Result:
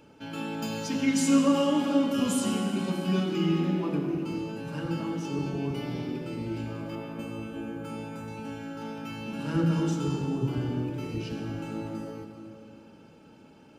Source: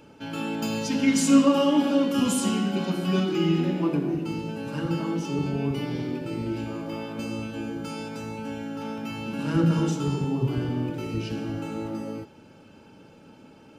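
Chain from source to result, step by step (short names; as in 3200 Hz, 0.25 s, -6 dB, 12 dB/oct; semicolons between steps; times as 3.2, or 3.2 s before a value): 6.95–8.28 bell 5100 Hz -10.5 dB 1.1 oct; on a send: reverb RT60 3.1 s, pre-delay 83 ms, DRR 8 dB; on the sum: gain -4 dB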